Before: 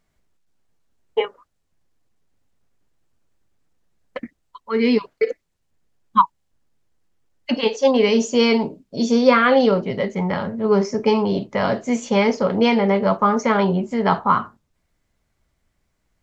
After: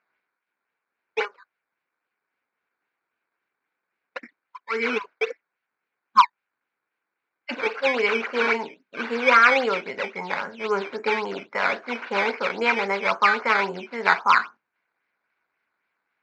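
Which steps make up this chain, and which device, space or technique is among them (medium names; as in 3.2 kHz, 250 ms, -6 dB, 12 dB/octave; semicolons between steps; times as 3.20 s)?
circuit-bent sampling toy (decimation with a swept rate 11×, swing 100% 3.7 Hz; cabinet simulation 460–4300 Hz, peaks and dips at 600 Hz -5 dB, 1 kHz +3 dB, 1.5 kHz +10 dB, 2.3 kHz +9 dB, 3.3 kHz -5 dB); trim -3.5 dB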